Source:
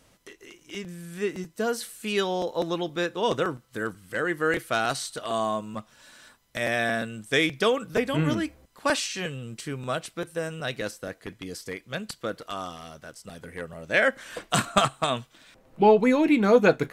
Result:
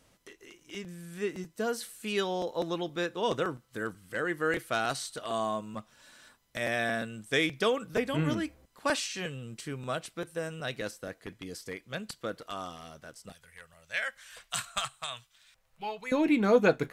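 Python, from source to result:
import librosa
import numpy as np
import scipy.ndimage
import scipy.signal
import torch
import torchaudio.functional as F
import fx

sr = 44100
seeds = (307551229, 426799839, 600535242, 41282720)

y = fx.tone_stack(x, sr, knobs='10-0-10', at=(13.32, 16.12))
y = y * librosa.db_to_amplitude(-4.5)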